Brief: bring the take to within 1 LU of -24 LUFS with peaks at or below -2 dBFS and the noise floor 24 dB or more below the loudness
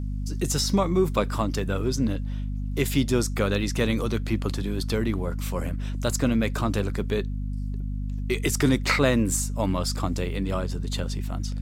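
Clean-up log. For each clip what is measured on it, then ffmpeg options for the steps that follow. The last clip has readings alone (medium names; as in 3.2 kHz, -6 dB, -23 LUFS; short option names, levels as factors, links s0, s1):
hum 50 Hz; highest harmonic 250 Hz; hum level -27 dBFS; loudness -26.0 LUFS; peak level -5.5 dBFS; loudness target -24.0 LUFS
-> -af "bandreject=f=50:t=h:w=6,bandreject=f=100:t=h:w=6,bandreject=f=150:t=h:w=6,bandreject=f=200:t=h:w=6,bandreject=f=250:t=h:w=6"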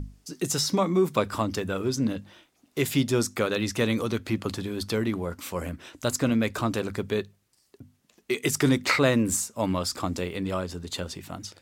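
hum not found; loudness -27.0 LUFS; peak level -6.0 dBFS; loudness target -24.0 LUFS
-> -af "volume=1.41"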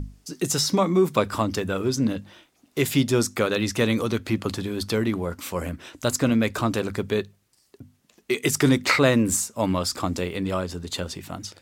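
loudness -24.0 LUFS; peak level -3.0 dBFS; noise floor -65 dBFS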